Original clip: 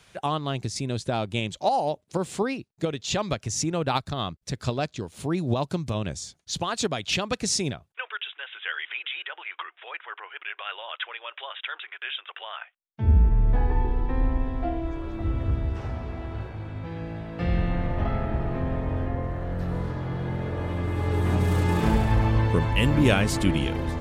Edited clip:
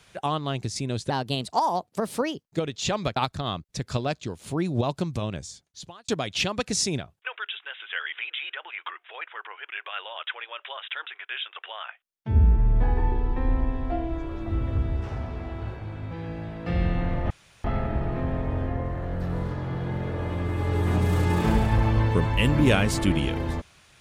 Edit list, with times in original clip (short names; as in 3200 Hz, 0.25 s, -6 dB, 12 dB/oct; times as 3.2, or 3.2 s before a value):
1.1–2.71 speed 119%
3.42–3.89 cut
5.84–6.81 fade out
18.03 insert room tone 0.34 s